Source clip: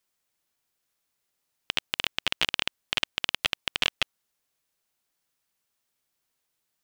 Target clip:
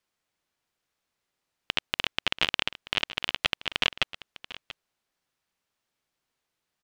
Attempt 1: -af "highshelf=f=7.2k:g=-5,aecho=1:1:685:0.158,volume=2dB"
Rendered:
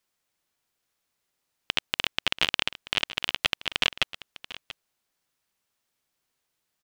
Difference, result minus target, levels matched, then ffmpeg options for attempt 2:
8000 Hz band +3.0 dB
-af "highshelf=f=7.2k:g=-14.5,aecho=1:1:685:0.158,volume=2dB"

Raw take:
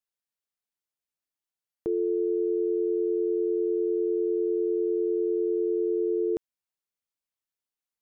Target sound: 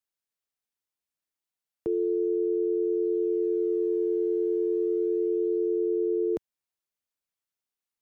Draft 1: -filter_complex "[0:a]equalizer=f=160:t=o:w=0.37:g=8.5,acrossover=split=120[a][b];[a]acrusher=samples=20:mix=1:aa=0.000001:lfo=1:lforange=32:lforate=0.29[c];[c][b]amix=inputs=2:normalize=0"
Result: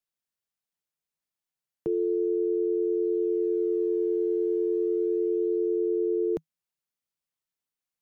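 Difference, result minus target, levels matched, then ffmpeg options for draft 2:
125 Hz band +4.0 dB
-filter_complex "[0:a]acrossover=split=120[a][b];[a]acrusher=samples=20:mix=1:aa=0.000001:lfo=1:lforange=32:lforate=0.29[c];[c][b]amix=inputs=2:normalize=0"

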